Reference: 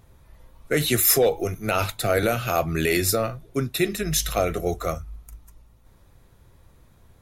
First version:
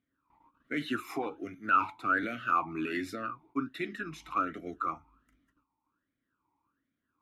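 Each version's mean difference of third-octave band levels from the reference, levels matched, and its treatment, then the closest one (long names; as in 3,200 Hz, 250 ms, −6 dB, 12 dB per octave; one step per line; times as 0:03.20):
10.0 dB: noise gate −47 dBFS, range −12 dB
flat-topped bell 1,000 Hz +12.5 dB
formant filter swept between two vowels i-u 1.3 Hz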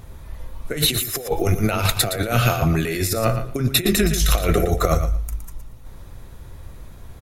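7.5 dB: low-shelf EQ 61 Hz +7 dB
compressor whose output falls as the input rises −26 dBFS, ratio −0.5
on a send: repeating echo 116 ms, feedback 18%, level −9.5 dB
on the sum: level +7 dB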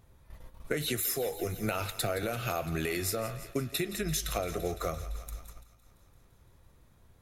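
5.5 dB: downward compressor 16 to 1, threshold −30 dBFS, peak gain reduction 16.5 dB
on a send: feedback echo with a high-pass in the loop 170 ms, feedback 78%, high-pass 490 Hz, level −14.5 dB
on the sum: noise gate −47 dBFS, range −8 dB
level +1.5 dB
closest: third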